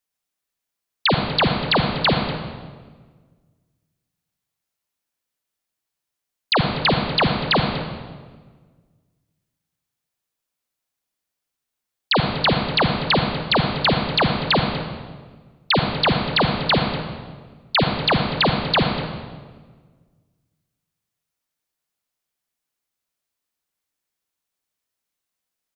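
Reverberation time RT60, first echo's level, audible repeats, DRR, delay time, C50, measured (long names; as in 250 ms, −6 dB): 1.5 s, −17.5 dB, 1, 3.5 dB, 243 ms, 4.0 dB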